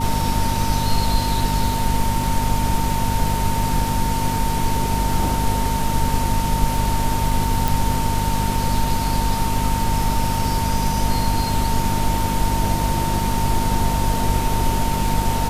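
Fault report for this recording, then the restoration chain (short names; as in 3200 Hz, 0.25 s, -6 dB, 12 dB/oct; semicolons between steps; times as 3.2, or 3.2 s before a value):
crackle 32/s -28 dBFS
hum 50 Hz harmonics 5 -24 dBFS
tone 910 Hz -24 dBFS
7.68 pop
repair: de-click; notch 910 Hz, Q 30; de-hum 50 Hz, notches 5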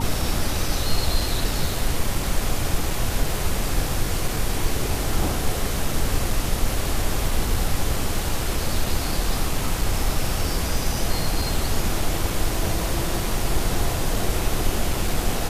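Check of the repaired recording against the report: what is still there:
none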